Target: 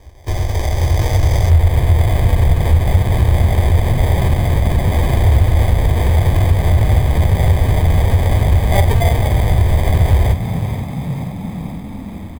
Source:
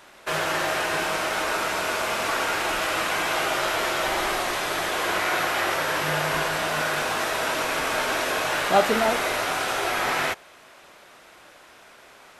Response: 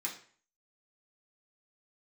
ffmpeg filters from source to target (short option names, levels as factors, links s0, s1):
-filter_complex "[0:a]acrusher=samples=32:mix=1:aa=0.000001,lowshelf=f=130:t=q:w=3:g=14,asplit=8[s0][s1][s2][s3][s4][s5][s6][s7];[s1]adelay=479,afreqshift=32,volume=0.224[s8];[s2]adelay=958,afreqshift=64,volume=0.141[s9];[s3]adelay=1437,afreqshift=96,volume=0.0891[s10];[s4]adelay=1916,afreqshift=128,volume=0.0562[s11];[s5]adelay=2395,afreqshift=160,volume=0.0351[s12];[s6]adelay=2874,afreqshift=192,volume=0.0221[s13];[s7]adelay=3353,afreqshift=224,volume=0.014[s14];[s0][s8][s9][s10][s11][s12][s13][s14]amix=inputs=8:normalize=0,acompressor=threshold=0.141:ratio=2,asetnsamples=n=441:p=0,asendcmd='1.5 equalizer g -10.5',equalizer=f=5700:t=o:w=0.5:g=3.5,dynaudnorm=f=320:g=5:m=2,volume=1.19"